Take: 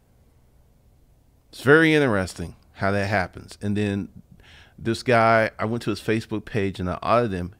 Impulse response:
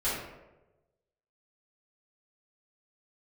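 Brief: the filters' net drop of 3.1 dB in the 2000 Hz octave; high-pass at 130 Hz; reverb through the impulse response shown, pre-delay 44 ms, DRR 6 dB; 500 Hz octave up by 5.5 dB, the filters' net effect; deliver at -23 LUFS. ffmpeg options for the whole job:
-filter_complex "[0:a]highpass=130,equalizer=f=500:t=o:g=7,equalizer=f=2k:t=o:g=-5,asplit=2[a][b];[1:a]atrim=start_sample=2205,adelay=44[c];[b][c]afir=irnorm=-1:irlink=0,volume=-15dB[d];[a][d]amix=inputs=2:normalize=0,volume=-5dB"

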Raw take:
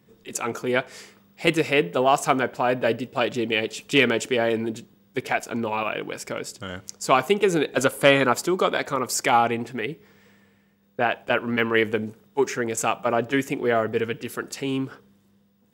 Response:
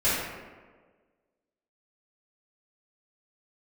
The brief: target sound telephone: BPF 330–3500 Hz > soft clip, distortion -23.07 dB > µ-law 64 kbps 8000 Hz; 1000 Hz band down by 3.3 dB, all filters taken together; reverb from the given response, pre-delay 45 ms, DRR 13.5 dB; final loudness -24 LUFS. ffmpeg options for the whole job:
-filter_complex "[0:a]equalizer=f=1k:t=o:g=-4.5,asplit=2[a][b];[1:a]atrim=start_sample=2205,adelay=45[c];[b][c]afir=irnorm=-1:irlink=0,volume=-28dB[d];[a][d]amix=inputs=2:normalize=0,highpass=330,lowpass=3.5k,asoftclip=threshold=-8dB,volume=2.5dB" -ar 8000 -c:a pcm_mulaw

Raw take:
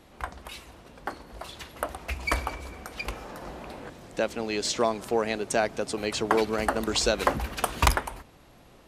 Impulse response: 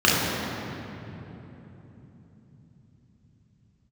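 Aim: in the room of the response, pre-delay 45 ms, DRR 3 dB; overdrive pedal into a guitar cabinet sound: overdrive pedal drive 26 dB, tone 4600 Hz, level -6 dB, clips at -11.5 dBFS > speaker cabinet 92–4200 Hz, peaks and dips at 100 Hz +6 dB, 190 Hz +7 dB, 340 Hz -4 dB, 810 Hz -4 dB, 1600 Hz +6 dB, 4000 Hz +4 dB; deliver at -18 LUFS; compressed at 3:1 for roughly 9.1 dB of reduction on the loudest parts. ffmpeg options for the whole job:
-filter_complex "[0:a]acompressor=threshold=-29dB:ratio=3,asplit=2[a][b];[1:a]atrim=start_sample=2205,adelay=45[c];[b][c]afir=irnorm=-1:irlink=0,volume=-25dB[d];[a][d]amix=inputs=2:normalize=0,asplit=2[e][f];[f]highpass=f=720:p=1,volume=26dB,asoftclip=type=tanh:threshold=-11.5dB[g];[e][g]amix=inputs=2:normalize=0,lowpass=f=4.6k:p=1,volume=-6dB,highpass=92,equalizer=f=100:t=q:w=4:g=6,equalizer=f=190:t=q:w=4:g=7,equalizer=f=340:t=q:w=4:g=-4,equalizer=f=810:t=q:w=4:g=-4,equalizer=f=1.6k:t=q:w=4:g=6,equalizer=f=4k:t=q:w=4:g=4,lowpass=f=4.2k:w=0.5412,lowpass=f=4.2k:w=1.3066,volume=3.5dB"

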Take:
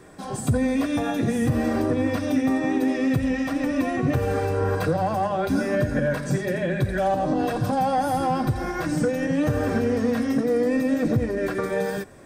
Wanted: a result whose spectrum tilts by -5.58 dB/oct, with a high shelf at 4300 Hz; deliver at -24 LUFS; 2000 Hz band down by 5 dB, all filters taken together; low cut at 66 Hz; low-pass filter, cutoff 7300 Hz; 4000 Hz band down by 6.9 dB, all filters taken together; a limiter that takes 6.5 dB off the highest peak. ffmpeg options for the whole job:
-af "highpass=66,lowpass=7.3k,equalizer=f=2k:t=o:g=-4.5,equalizer=f=4k:t=o:g=-4,highshelf=f=4.3k:g=-5.5,volume=2dB,alimiter=limit=-15.5dB:level=0:latency=1"

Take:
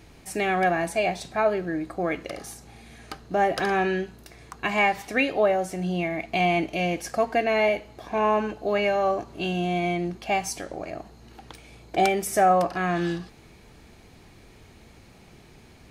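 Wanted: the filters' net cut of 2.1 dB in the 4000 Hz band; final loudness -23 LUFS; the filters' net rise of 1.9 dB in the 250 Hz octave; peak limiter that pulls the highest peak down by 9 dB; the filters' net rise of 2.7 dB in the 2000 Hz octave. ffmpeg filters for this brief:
-af "equalizer=f=250:t=o:g=3,equalizer=f=2k:t=o:g=5,equalizer=f=4k:t=o:g=-6.5,volume=3dB,alimiter=limit=-12.5dB:level=0:latency=1"

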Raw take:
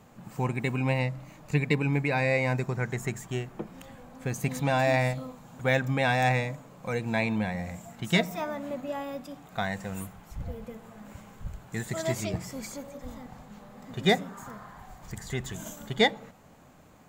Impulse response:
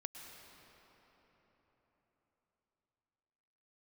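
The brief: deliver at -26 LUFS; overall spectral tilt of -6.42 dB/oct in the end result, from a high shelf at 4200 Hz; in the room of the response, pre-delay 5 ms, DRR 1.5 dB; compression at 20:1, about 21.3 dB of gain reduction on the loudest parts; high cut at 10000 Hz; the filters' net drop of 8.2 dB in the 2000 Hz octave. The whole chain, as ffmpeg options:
-filter_complex "[0:a]lowpass=10k,equalizer=f=2k:t=o:g=-8.5,highshelf=f=4.2k:g=-6,acompressor=threshold=-40dB:ratio=20,asplit=2[a][b];[1:a]atrim=start_sample=2205,adelay=5[c];[b][c]afir=irnorm=-1:irlink=0,volume=1.5dB[d];[a][d]amix=inputs=2:normalize=0,volume=18dB"

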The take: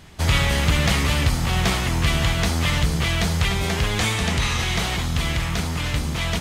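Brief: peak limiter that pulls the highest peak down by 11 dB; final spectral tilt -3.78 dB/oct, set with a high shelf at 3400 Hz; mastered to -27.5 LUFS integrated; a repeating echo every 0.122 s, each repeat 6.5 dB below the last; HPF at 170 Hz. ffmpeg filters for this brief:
-af "highpass=170,highshelf=f=3.4k:g=4,alimiter=limit=-16.5dB:level=0:latency=1,aecho=1:1:122|244|366|488|610|732:0.473|0.222|0.105|0.0491|0.0231|0.0109,volume=-3dB"

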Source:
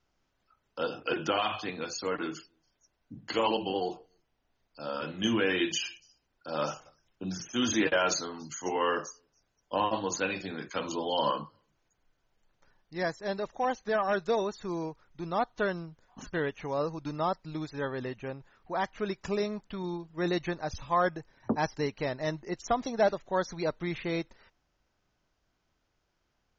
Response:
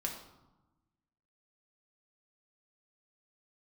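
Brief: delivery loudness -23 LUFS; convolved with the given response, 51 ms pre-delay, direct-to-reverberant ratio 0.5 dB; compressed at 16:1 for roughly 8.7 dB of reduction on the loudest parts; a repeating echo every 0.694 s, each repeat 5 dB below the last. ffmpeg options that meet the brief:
-filter_complex "[0:a]acompressor=threshold=-30dB:ratio=16,aecho=1:1:694|1388|2082|2776|3470|4164|4858:0.562|0.315|0.176|0.0988|0.0553|0.031|0.0173,asplit=2[a][b];[1:a]atrim=start_sample=2205,adelay=51[c];[b][c]afir=irnorm=-1:irlink=0,volume=-2dB[d];[a][d]amix=inputs=2:normalize=0,volume=10dB"

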